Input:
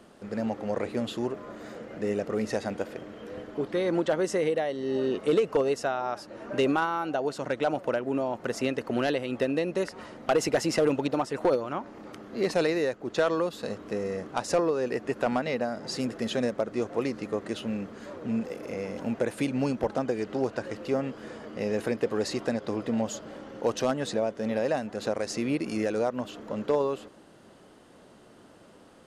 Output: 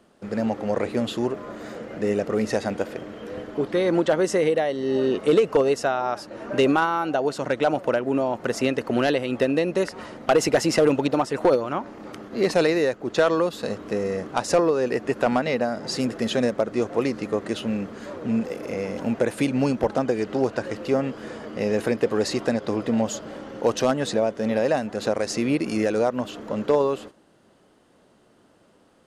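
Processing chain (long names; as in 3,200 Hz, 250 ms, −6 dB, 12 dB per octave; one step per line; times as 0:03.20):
noise gate −45 dBFS, range −10 dB
level +5.5 dB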